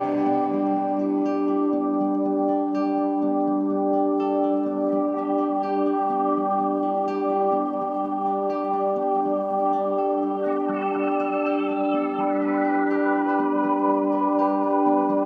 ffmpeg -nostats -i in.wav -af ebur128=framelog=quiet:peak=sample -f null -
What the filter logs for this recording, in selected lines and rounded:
Integrated loudness:
  I:         -23.1 LUFS
  Threshold: -33.1 LUFS
Loudness range:
  LRA:         1.5 LU
  Threshold: -43.3 LUFS
  LRA low:   -23.9 LUFS
  LRA high:  -22.4 LUFS
Sample peak:
  Peak:       -9.4 dBFS